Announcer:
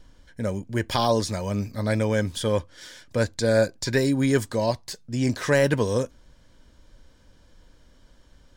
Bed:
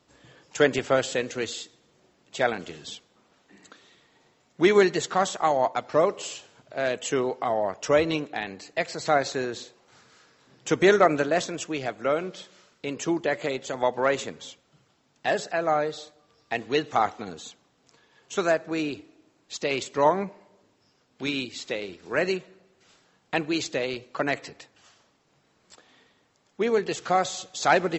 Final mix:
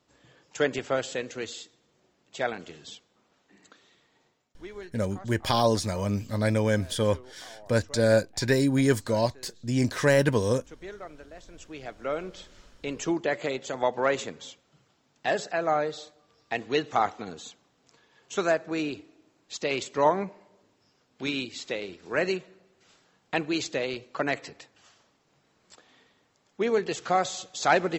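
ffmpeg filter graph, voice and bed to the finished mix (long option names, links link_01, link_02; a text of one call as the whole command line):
ffmpeg -i stem1.wav -i stem2.wav -filter_complex "[0:a]adelay=4550,volume=-1dB[link_01];[1:a]volume=17dB,afade=type=out:start_time=4.2:duration=0.41:silence=0.11885,afade=type=in:start_time=11.42:duration=1.22:silence=0.0794328[link_02];[link_01][link_02]amix=inputs=2:normalize=0" out.wav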